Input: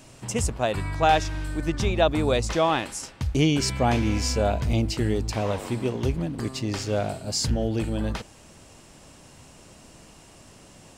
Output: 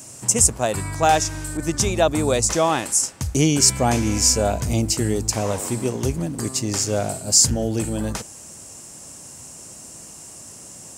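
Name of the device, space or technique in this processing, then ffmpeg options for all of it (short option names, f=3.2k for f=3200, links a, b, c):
budget condenser microphone: -filter_complex "[0:a]highpass=70,highshelf=f=5.1k:t=q:w=1.5:g=11.5,asettb=1/sr,asplit=3[a][b][c];[a]atrim=end=1.574[d];[b]atrim=start=1.57:end=2,asetpts=PTS-STARTPTS,afade=t=in:d=0.004:c=qsin,afade=t=out:st=0.426:d=0.004:c=qsin,adynamicequalizer=threshold=0.0126:dfrequency=3200:dqfactor=0.7:tfrequency=3200:tqfactor=0.7:attack=5:release=100:ratio=0.375:range=1.5:mode=boostabove:tftype=highshelf[e];[c]atrim=start=1.996[f];[d][e]acrossfade=d=0.004:c1=hsin:c2=qsin[g];[g][f]acrossfade=d=0.004:c1=qsin:c2=hsin,volume=3dB"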